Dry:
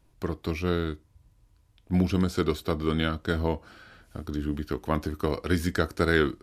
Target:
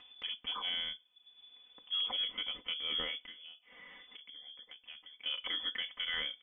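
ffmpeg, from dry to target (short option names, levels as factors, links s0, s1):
-filter_complex "[0:a]asettb=1/sr,asplit=3[s0][s1][s2];[s0]atrim=end=3.214[s3];[s1]atrim=start=3.21:end=5.26,asetpts=PTS-STARTPTS,afade=t=in:d=0.004:c=qsin,afade=t=out:st=2.046:d=0.004:c=qsin,acompressor=threshold=0.00631:ratio=4[s4];[s2]atrim=start=5.256[s5];[s3][s4]acrossfade=d=0.004:c1=hsin:c2=qsin[s6];[s6][s5]acrossfade=d=0.004:c1=qsin:c2=hsin,lowpass=f=3000:t=q:w=0.5098,lowpass=f=3000:t=q:w=0.6013,lowpass=f=3000:t=q:w=0.9,lowpass=f=3000:t=q:w=2.563,afreqshift=-3500,tiltshelf=f=1200:g=5.5,acompressor=mode=upward:threshold=0.00708:ratio=2.5,aecho=1:1:4:0.87,alimiter=limit=0.0841:level=0:latency=1:release=81,volume=0.501"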